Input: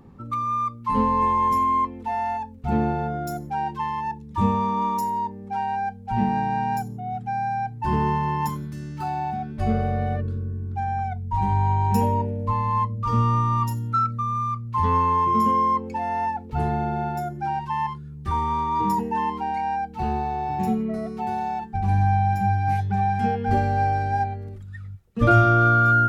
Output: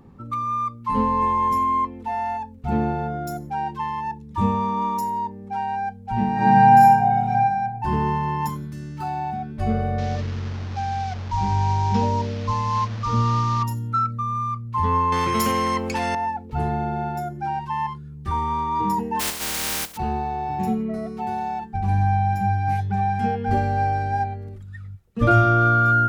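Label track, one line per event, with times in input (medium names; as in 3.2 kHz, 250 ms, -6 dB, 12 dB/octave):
6.340000	7.310000	reverb throw, RT60 1.3 s, DRR -8.5 dB
9.980000	13.630000	one-bit delta coder 32 kbps, step -31.5 dBFS
15.120000	16.150000	spectrum-flattening compressor 2:1
19.190000	19.960000	spectral contrast reduction exponent 0.12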